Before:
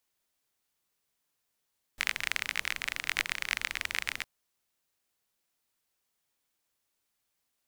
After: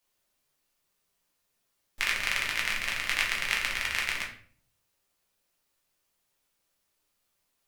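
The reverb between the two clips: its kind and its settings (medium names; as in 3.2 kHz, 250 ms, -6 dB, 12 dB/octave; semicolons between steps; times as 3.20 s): simulated room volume 55 m³, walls mixed, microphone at 0.84 m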